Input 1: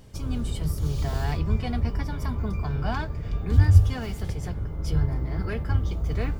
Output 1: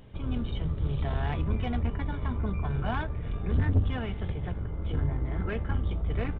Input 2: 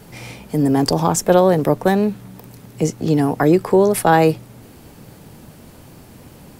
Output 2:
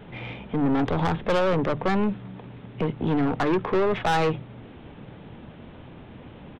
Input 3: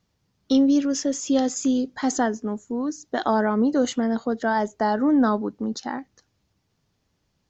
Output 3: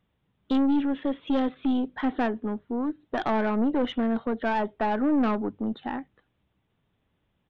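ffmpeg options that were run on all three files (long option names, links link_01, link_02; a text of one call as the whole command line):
ffmpeg -i in.wav -af "aresample=8000,aresample=44100,aeval=exprs='(tanh(8.91*val(0)+0.3)-tanh(0.3))/8.91':channel_layout=same,bandreject=frequency=50:width_type=h:width=6,bandreject=frequency=100:width_type=h:width=6,bandreject=frequency=150:width_type=h:width=6" out.wav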